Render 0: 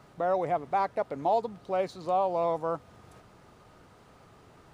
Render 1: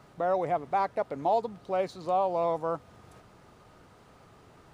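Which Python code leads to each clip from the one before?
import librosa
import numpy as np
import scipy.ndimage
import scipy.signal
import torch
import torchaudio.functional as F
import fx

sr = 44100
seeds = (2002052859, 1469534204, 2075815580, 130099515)

y = x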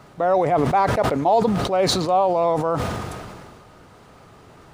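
y = fx.sustainer(x, sr, db_per_s=29.0)
y = F.gain(torch.from_numpy(y), 8.0).numpy()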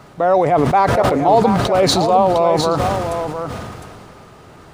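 y = x + 10.0 ** (-7.5 / 20.0) * np.pad(x, (int(707 * sr / 1000.0), 0))[:len(x)]
y = F.gain(torch.from_numpy(y), 4.5).numpy()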